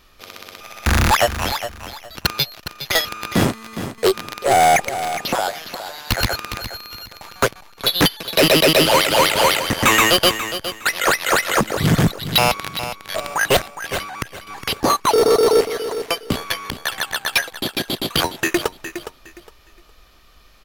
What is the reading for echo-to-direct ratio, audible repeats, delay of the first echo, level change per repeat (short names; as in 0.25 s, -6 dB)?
-10.5 dB, 2, 0.412 s, -12.5 dB